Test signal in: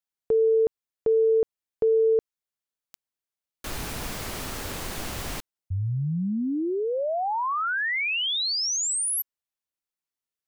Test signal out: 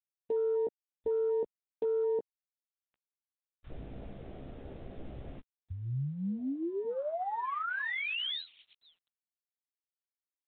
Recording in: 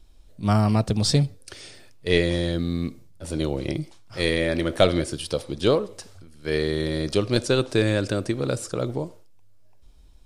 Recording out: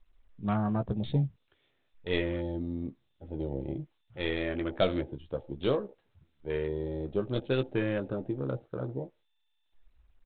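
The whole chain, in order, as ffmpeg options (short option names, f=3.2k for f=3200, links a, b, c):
-filter_complex "[0:a]afwtdn=0.0251,asplit=2[a][b];[b]adelay=15,volume=-7dB[c];[a][c]amix=inputs=2:normalize=0,volume=-9dB" -ar 8000 -c:a adpcm_g726 -b:a 40k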